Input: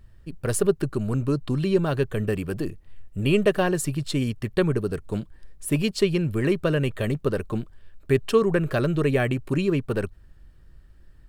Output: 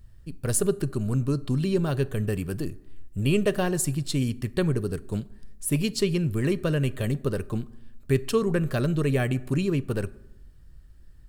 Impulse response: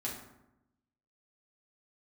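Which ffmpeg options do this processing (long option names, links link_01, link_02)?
-filter_complex "[0:a]bass=frequency=250:gain=6,treble=frequency=4000:gain=8,asplit=2[link_01][link_02];[1:a]atrim=start_sample=2205,lowshelf=frequency=160:gain=-12[link_03];[link_02][link_03]afir=irnorm=-1:irlink=0,volume=-15.5dB[link_04];[link_01][link_04]amix=inputs=2:normalize=0,volume=-5.5dB"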